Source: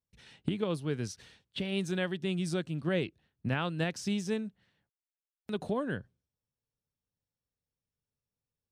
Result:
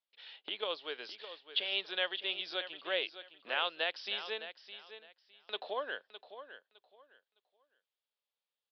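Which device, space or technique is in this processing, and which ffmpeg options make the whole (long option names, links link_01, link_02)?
musical greeting card: -af "aresample=11025,aresample=44100,highpass=frequency=530:width=0.5412,highpass=frequency=530:width=1.3066,equalizer=frequency=3300:width_type=o:width=0.57:gain=9,aecho=1:1:610|1220|1830:0.251|0.0553|0.0122"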